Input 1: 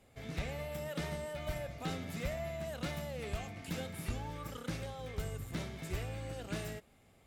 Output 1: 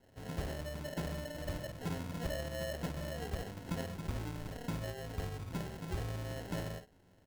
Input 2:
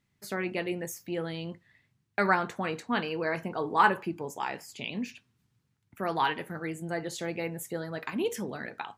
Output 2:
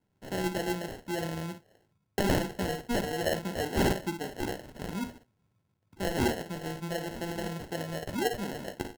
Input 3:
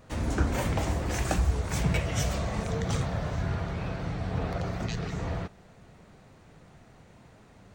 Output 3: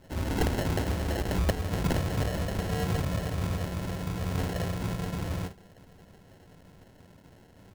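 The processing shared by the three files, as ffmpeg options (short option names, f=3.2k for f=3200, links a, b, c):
-af "aecho=1:1:11|55:0.376|0.335,acrusher=samples=37:mix=1:aa=0.000001,aeval=exprs='(mod(7.08*val(0)+1,2)-1)/7.08':c=same,volume=-1dB"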